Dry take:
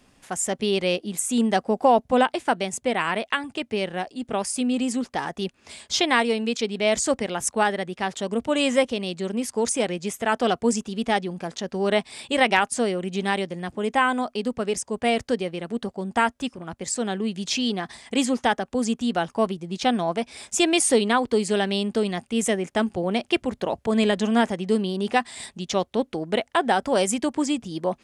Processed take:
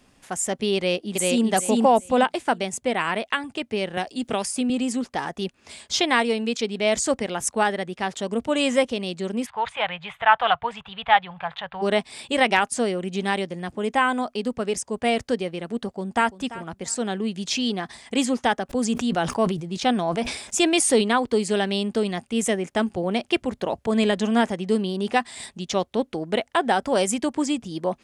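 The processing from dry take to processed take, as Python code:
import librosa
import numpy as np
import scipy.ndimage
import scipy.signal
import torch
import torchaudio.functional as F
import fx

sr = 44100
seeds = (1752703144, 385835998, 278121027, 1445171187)

y = fx.echo_throw(x, sr, start_s=0.76, length_s=0.7, ms=390, feedback_pct=20, wet_db=-1.0)
y = fx.band_squash(y, sr, depth_pct=70, at=(3.97, 4.7))
y = fx.curve_eq(y, sr, hz=(150.0, 280.0, 440.0, 850.0, 3600.0, 5600.0), db=(0, -29, -13, 9, 4, -27), at=(9.45, 11.81), fade=0.02)
y = fx.echo_throw(y, sr, start_s=15.86, length_s=0.45, ms=340, feedback_pct=20, wet_db=-16.5)
y = fx.sustainer(y, sr, db_per_s=73.0, at=(18.69, 21.01), fade=0.02)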